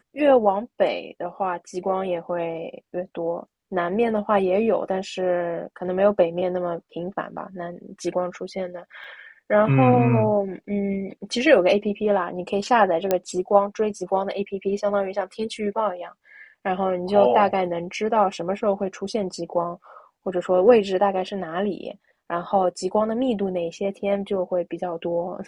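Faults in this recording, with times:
9.04 gap 2.7 ms
13.11 pop -7 dBFS

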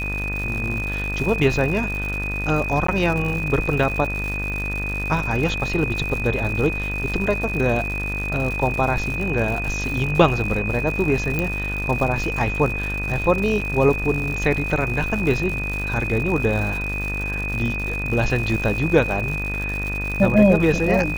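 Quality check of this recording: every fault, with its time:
buzz 50 Hz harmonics 40 -28 dBFS
crackle 180/s -27 dBFS
tone 2500 Hz -26 dBFS
2.87–2.88 gap 14 ms
11.39 pop -9 dBFS
13.61–13.62 gap 5.9 ms

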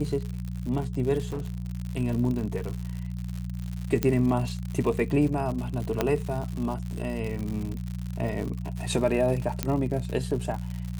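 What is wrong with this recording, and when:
crackle 120/s -32 dBFS
hum 60 Hz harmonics 3 -33 dBFS
1.25–1.72 clipped -27.5 dBFS
4.03 pop -10 dBFS
6.01 pop -9 dBFS
9.63 pop -10 dBFS

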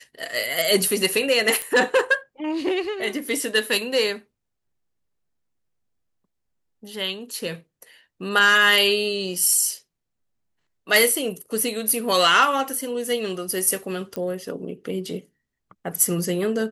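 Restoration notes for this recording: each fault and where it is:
1.62 pop -12 dBFS
14.16 pop -16 dBFS

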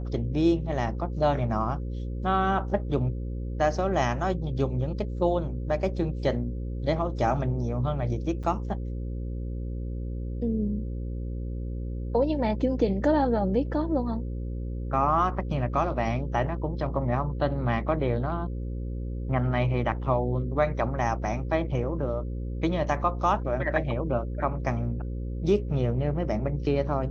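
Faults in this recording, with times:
buzz 60 Hz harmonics 9 -32 dBFS
8.43–8.44 gap 6.5 ms

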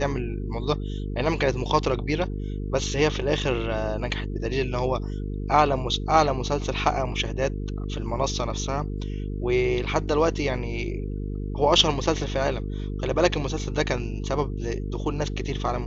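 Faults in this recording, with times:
buzz 50 Hz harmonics 9 -30 dBFS

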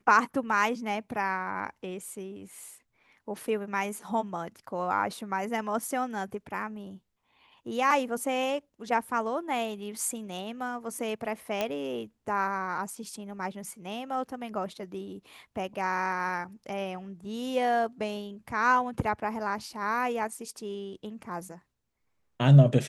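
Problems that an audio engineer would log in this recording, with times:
11.61 pop -14 dBFS

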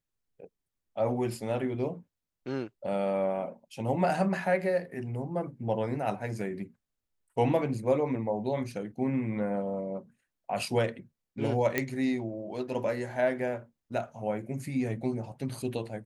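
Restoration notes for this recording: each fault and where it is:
11.78 pop -12 dBFS

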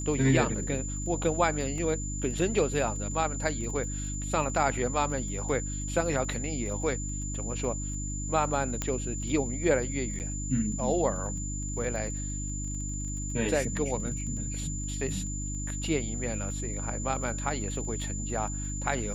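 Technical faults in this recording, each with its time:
crackle 19/s -39 dBFS
hum 50 Hz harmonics 6 -35 dBFS
tone 7100 Hz -37 dBFS
1.78 gap 2 ms
8.82 pop -14 dBFS
10.19–10.2 gap 9.1 ms

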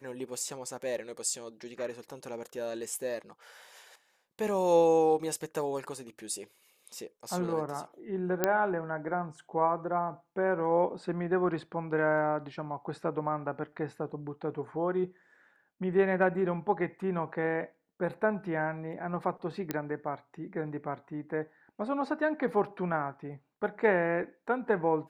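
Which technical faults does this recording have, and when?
8.44 pop -11 dBFS
19.71 pop -16 dBFS

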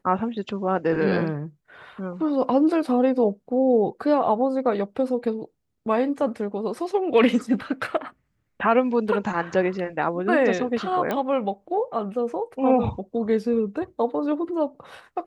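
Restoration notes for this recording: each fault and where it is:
11.11 pop -13 dBFS

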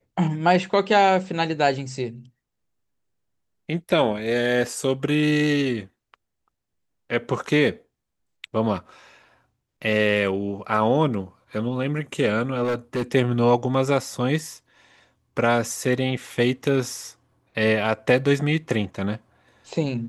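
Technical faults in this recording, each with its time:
12.63–13.03 clipped -20.5 dBFS

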